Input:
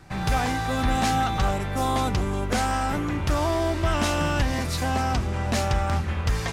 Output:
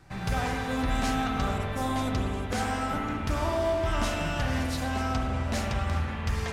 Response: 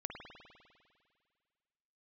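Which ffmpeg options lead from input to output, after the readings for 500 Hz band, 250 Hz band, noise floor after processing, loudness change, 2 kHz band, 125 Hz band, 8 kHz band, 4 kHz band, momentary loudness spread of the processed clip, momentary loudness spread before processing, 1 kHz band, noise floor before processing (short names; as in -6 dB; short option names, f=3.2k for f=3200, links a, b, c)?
-3.0 dB, -3.0 dB, -34 dBFS, -4.5 dB, -3.5 dB, -5.0 dB, -6.5 dB, -5.0 dB, 3 LU, 3 LU, -6.0 dB, -29 dBFS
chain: -filter_complex "[1:a]atrim=start_sample=2205[a];[0:a][a]afir=irnorm=-1:irlink=0,volume=-2.5dB"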